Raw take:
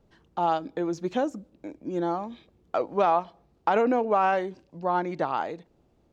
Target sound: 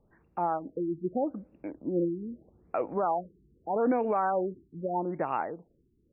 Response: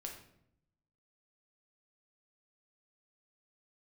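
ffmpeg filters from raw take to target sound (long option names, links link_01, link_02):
-af "dynaudnorm=framelen=210:gausssize=13:maxgain=5dB,alimiter=limit=-15dB:level=0:latency=1:release=79,afftfilt=real='re*lt(b*sr/1024,420*pow(2900/420,0.5+0.5*sin(2*PI*0.8*pts/sr)))':imag='im*lt(b*sr/1024,420*pow(2900/420,0.5+0.5*sin(2*PI*0.8*pts/sr)))':win_size=1024:overlap=0.75,volume=-3.5dB"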